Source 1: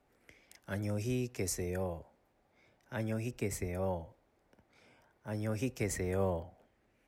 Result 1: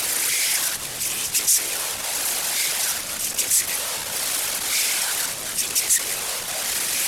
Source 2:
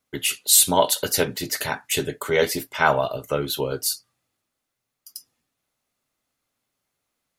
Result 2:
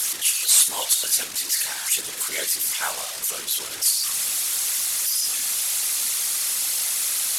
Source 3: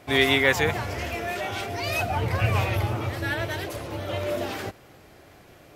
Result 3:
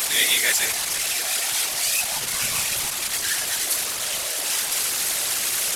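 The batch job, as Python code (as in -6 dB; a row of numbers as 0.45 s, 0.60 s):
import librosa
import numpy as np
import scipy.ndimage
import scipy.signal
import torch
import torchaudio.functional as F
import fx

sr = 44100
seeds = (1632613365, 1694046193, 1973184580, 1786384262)

y = fx.delta_mod(x, sr, bps=64000, step_db=-20.0)
y = fx.whisperise(y, sr, seeds[0])
y = F.preemphasis(torch.from_numpy(y), 0.97).numpy()
y = y * 10.0 ** (-24 / 20.0) / np.sqrt(np.mean(np.square(y)))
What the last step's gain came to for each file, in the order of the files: +11.0 dB, +4.5 dB, +10.0 dB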